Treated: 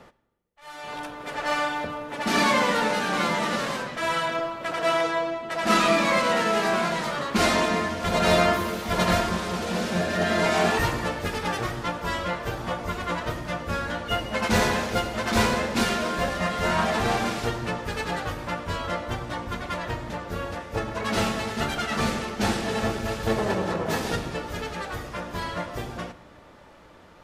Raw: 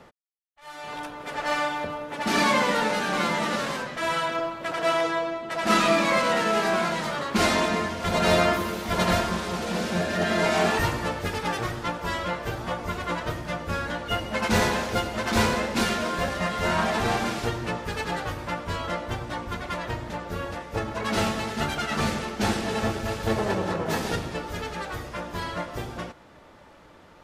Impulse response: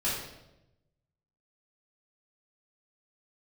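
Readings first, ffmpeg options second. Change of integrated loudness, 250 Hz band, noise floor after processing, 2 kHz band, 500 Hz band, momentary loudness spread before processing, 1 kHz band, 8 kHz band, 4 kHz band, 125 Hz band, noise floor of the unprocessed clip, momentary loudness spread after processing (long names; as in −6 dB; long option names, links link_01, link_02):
+0.5 dB, +0.5 dB, −50 dBFS, +0.5 dB, +0.5 dB, 11 LU, +0.5 dB, +0.5 dB, +0.5 dB, 0.0 dB, −51 dBFS, 11 LU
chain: -filter_complex "[0:a]asplit=2[link_01][link_02];[1:a]atrim=start_sample=2205,asetrate=31311,aresample=44100[link_03];[link_02][link_03]afir=irnorm=-1:irlink=0,volume=-24dB[link_04];[link_01][link_04]amix=inputs=2:normalize=0"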